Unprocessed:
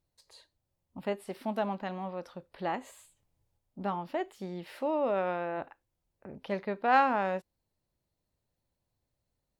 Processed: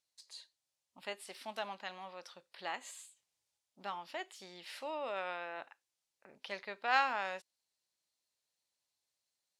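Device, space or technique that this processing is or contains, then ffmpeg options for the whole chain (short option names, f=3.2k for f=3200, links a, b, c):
piezo pickup straight into a mixer: -af "lowpass=6.3k,aderivative,volume=10.5dB"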